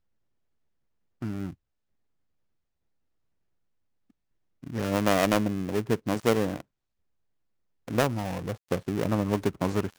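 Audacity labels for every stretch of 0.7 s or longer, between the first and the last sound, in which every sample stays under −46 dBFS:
1.540000	4.630000	silence
6.610000	7.880000	silence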